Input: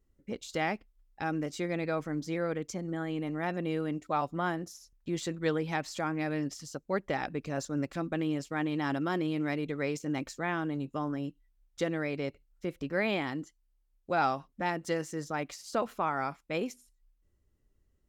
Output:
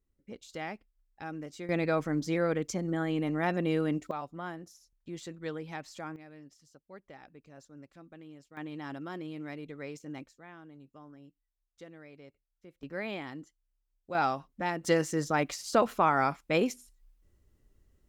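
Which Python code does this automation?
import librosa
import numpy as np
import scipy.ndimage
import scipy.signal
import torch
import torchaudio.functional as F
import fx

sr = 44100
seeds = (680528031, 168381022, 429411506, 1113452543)

y = fx.gain(x, sr, db=fx.steps((0.0, -7.5), (1.69, 3.5), (4.11, -8.0), (6.16, -18.5), (8.57, -9.0), (10.26, -18.0), (12.83, -7.0), (14.15, -0.5), (14.84, 6.0)))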